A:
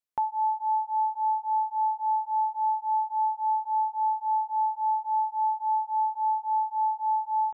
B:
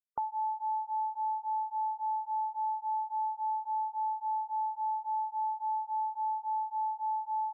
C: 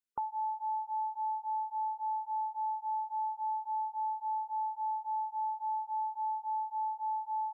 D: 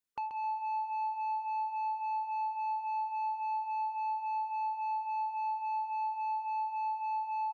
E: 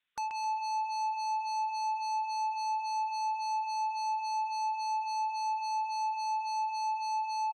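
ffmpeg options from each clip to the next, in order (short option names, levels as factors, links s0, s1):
-af "afftfilt=real='re*gte(hypot(re,im),0.0112)':imag='im*gte(hypot(re,im),0.0112)':win_size=1024:overlap=0.75,acompressor=threshold=0.0316:ratio=2.5,volume=0.75"
-af "equalizer=f=680:t=o:w=0.32:g=-9.5"
-af "asoftclip=type=tanh:threshold=0.02,aecho=1:1:132|264|396|528:0.398|0.139|0.0488|0.0171,volume=1.26"
-filter_complex "[0:a]aresample=8000,aresample=44100,acrossover=split=1400[s0][s1];[s1]aeval=exprs='0.0106*sin(PI/2*3.55*val(0)/0.0106)':c=same[s2];[s0][s2]amix=inputs=2:normalize=0"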